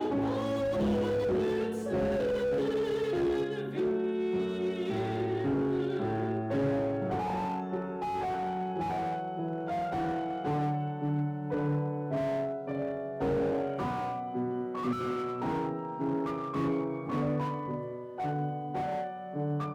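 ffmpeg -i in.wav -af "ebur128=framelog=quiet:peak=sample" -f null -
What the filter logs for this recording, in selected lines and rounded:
Integrated loudness:
  I:         -32.0 LUFS
  Threshold: -42.0 LUFS
Loudness range:
  LRA:         3.1 LU
  Threshold: -52.0 LUFS
  LRA low:   -33.3 LUFS
  LRA high:  -30.2 LUFS
Sample peak:
  Peak:      -23.4 dBFS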